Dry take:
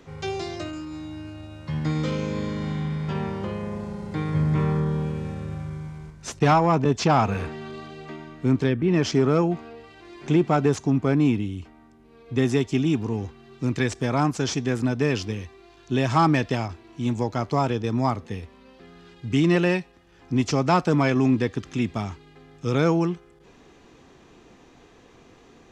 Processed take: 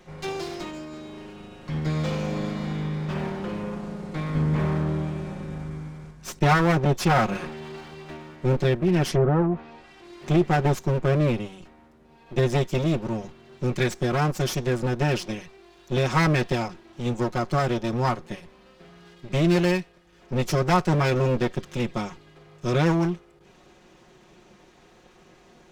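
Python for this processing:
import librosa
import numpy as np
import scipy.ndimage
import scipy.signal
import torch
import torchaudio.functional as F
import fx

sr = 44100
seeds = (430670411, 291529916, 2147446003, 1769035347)

y = fx.lower_of_two(x, sr, delay_ms=5.5)
y = fx.env_lowpass_down(y, sr, base_hz=1200.0, full_db=-18.0, at=(9.09, 10.21))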